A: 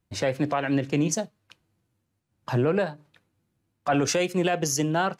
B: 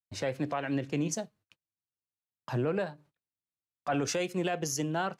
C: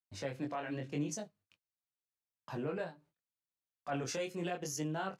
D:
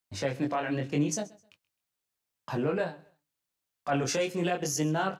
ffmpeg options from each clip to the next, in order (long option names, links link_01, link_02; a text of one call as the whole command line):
ffmpeg -i in.wav -af "agate=range=-27dB:threshold=-52dB:ratio=16:detection=peak,volume=-7dB" out.wav
ffmpeg -i in.wav -af "flanger=delay=19.5:depth=4.9:speed=0.82,volume=-4dB" out.wav
ffmpeg -i in.wav -af "aecho=1:1:130|260:0.0794|0.0214,volume=9dB" out.wav